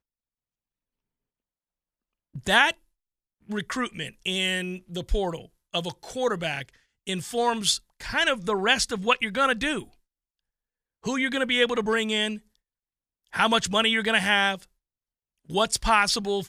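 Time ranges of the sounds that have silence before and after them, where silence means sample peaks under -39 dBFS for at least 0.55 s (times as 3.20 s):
2.35–2.72 s
3.49–9.84 s
11.05–12.38 s
13.33–14.63 s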